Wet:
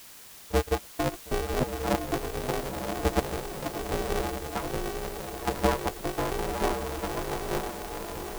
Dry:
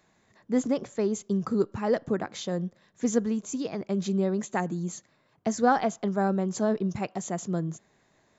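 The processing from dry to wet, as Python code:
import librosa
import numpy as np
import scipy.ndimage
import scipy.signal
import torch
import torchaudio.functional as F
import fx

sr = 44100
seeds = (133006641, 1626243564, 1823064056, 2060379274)

y = fx.vocoder_arp(x, sr, chord='minor triad', root=45, every_ms=420)
y = fx.highpass(y, sr, hz=390.0, slope=6)
y = fx.transient(y, sr, attack_db=5, sustain_db=-12)
y = fx.quant_dither(y, sr, seeds[0], bits=8, dither='triangular')
y = fx.echo_diffused(y, sr, ms=977, feedback_pct=51, wet_db=-4)
y = y * np.sign(np.sin(2.0 * np.pi * 190.0 * np.arange(len(y)) / sr))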